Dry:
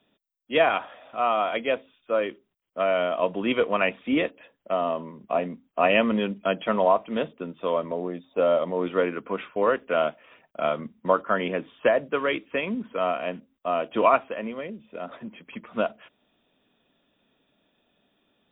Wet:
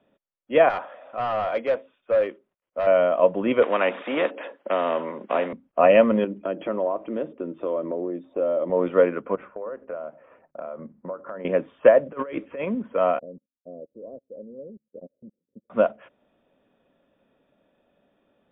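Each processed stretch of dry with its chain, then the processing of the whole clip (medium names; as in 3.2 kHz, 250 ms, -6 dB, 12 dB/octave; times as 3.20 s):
0.69–2.87 s: bass shelf 170 Hz -11.5 dB + hard clipper -25.5 dBFS
3.62–5.53 s: high-pass 270 Hz 24 dB/octave + spectrum-flattening compressor 2:1
6.24–8.70 s: peaking EQ 330 Hz +13.5 dB 0.6 oct + compression 2.5:1, threshold -32 dBFS
9.35–11.45 s: low-pass 1.5 kHz + compression, threshold -36 dBFS + hum notches 50/100/150/200/250/300/350 Hz
12.06–12.65 s: distance through air 150 m + compressor with a negative ratio -32 dBFS, ratio -0.5
13.19–15.70 s: elliptic low-pass 500 Hz, stop band 70 dB + level held to a coarse grid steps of 21 dB + upward expansion 2.5:1, over -55 dBFS
whole clip: low-pass 1.9 kHz 12 dB/octave; peaking EQ 550 Hz +8.5 dB 0.27 oct; trim +2 dB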